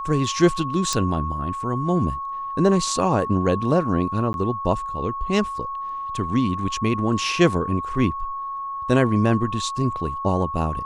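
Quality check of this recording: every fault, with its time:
whine 1.1 kHz -27 dBFS
0.93 s: pop -9 dBFS
4.33–4.34 s: dropout 11 ms

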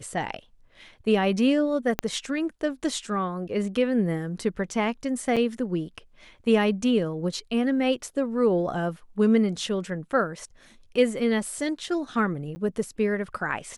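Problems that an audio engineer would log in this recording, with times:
1.99 s: pop -9 dBFS
5.36–5.37 s: dropout 6.4 ms
12.55–12.56 s: dropout 10 ms

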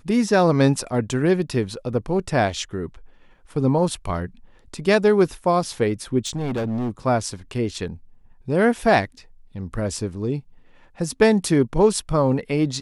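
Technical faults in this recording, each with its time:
6.25–6.90 s: clipped -21.5 dBFS

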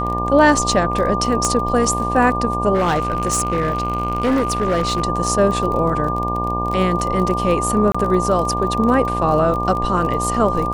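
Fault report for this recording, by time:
buzz 60 Hz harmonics 20 -24 dBFS
crackle 24 per s -23 dBFS
whine 1.2 kHz -22 dBFS
1.45 s: pop -6 dBFS
2.74–5.02 s: clipped -13.5 dBFS
7.92–7.95 s: dropout 25 ms

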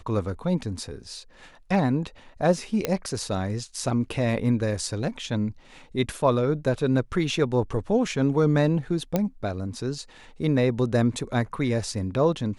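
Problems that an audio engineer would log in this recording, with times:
2.85 s: pop -9 dBFS
9.16 s: pop -10 dBFS

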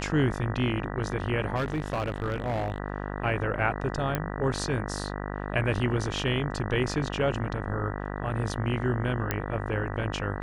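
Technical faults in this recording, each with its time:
buzz 50 Hz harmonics 39 -34 dBFS
1.55–2.78 s: clipped -24.5 dBFS
4.15 s: pop -13 dBFS
9.31 s: pop -11 dBFS

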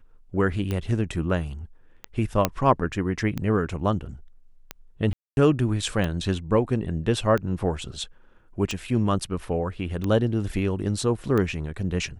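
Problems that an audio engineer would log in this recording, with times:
tick 45 rpm -15 dBFS
2.45 s: pop -5 dBFS
5.13–5.37 s: dropout 241 ms

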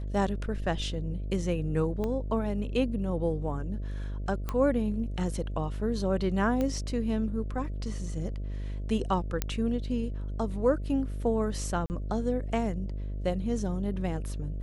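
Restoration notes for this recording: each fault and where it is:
buzz 50 Hz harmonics 13 -34 dBFS
2.04 s: pop -21 dBFS
4.49 s: pop -18 dBFS
6.61 s: pop -18 dBFS
9.42 s: pop -12 dBFS
11.86–11.90 s: dropout 39 ms

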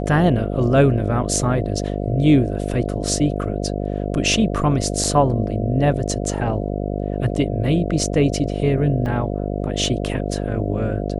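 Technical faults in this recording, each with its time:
buzz 50 Hz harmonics 14 -24 dBFS
5.04 s: dropout 3.5 ms
9.06 s: dropout 2.5 ms

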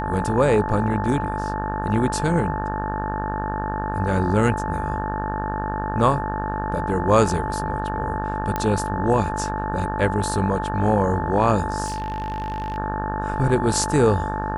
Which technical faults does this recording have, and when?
buzz 50 Hz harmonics 36 -28 dBFS
whine 870 Hz -27 dBFS
8.56 s: pop -10 dBFS
11.85–12.78 s: clipped -23 dBFS

